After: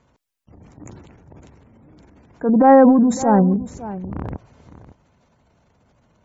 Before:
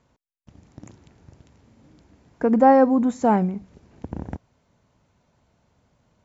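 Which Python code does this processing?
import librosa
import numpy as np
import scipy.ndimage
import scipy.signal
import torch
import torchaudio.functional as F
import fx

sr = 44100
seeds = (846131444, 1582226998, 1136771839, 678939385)

p1 = fx.spec_gate(x, sr, threshold_db=-30, keep='strong')
p2 = fx.transient(p1, sr, attack_db=-8, sustain_db=9)
p3 = p2 + fx.echo_single(p2, sr, ms=558, db=-15.5, dry=0)
y = p3 * 10.0 ** (4.5 / 20.0)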